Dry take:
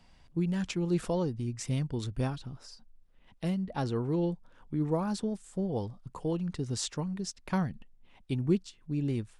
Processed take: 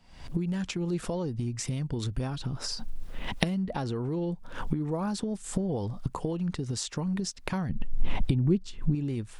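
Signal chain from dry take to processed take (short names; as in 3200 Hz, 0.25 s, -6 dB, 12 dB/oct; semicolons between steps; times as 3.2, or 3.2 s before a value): recorder AGC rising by 78 dB/s; 7.69–8.95 tilt -2 dB/oct; gain -2.5 dB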